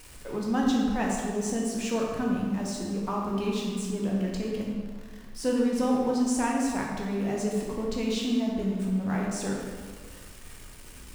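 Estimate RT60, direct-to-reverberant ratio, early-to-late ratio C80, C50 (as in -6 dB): 1.7 s, -2.5 dB, 2.5 dB, 0.5 dB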